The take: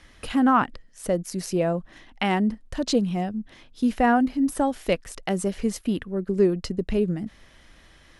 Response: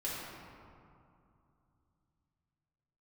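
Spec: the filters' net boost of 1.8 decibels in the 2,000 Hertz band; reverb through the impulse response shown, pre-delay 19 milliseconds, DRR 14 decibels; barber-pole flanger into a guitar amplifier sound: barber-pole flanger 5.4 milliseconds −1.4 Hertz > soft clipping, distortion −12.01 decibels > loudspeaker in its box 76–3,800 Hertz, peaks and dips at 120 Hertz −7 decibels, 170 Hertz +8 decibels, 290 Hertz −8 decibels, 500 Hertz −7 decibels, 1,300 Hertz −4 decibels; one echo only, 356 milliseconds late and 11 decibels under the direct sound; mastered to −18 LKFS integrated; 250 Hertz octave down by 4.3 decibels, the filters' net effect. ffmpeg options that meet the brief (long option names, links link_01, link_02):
-filter_complex "[0:a]equalizer=frequency=250:width_type=o:gain=-5.5,equalizer=frequency=2000:width_type=o:gain=3.5,aecho=1:1:356:0.282,asplit=2[link_01][link_02];[1:a]atrim=start_sample=2205,adelay=19[link_03];[link_02][link_03]afir=irnorm=-1:irlink=0,volume=-17.5dB[link_04];[link_01][link_04]amix=inputs=2:normalize=0,asplit=2[link_05][link_06];[link_06]adelay=5.4,afreqshift=-1.4[link_07];[link_05][link_07]amix=inputs=2:normalize=1,asoftclip=threshold=-22dB,highpass=76,equalizer=frequency=120:width_type=q:width=4:gain=-7,equalizer=frequency=170:width_type=q:width=4:gain=8,equalizer=frequency=290:width_type=q:width=4:gain=-8,equalizer=frequency=500:width_type=q:width=4:gain=-7,equalizer=frequency=1300:width_type=q:width=4:gain=-4,lowpass=frequency=3800:width=0.5412,lowpass=frequency=3800:width=1.3066,volume=14.5dB"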